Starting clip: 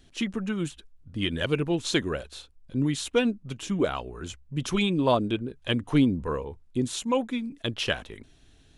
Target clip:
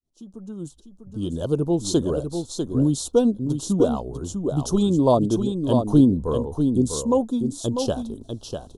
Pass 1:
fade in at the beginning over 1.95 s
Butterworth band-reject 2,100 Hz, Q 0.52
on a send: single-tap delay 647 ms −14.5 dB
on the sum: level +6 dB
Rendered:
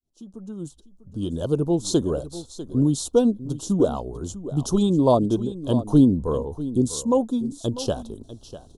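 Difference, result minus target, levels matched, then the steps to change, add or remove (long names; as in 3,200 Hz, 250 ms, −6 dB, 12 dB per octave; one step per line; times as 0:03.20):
echo-to-direct −8 dB
change: single-tap delay 647 ms −6.5 dB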